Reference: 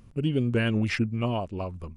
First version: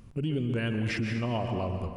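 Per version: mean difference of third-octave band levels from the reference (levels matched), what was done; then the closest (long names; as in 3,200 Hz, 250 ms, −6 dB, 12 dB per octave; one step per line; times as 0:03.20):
6.5 dB: dense smooth reverb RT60 1.7 s, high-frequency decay 0.8×, pre-delay 105 ms, DRR 7 dB
brickwall limiter −23.5 dBFS, peak gain reduction 9.5 dB
level +1.5 dB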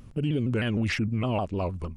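3.0 dB: brickwall limiter −23.5 dBFS, peak gain reduction 8.5 dB
pitch modulation by a square or saw wave saw down 6.5 Hz, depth 160 cents
level +4.5 dB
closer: second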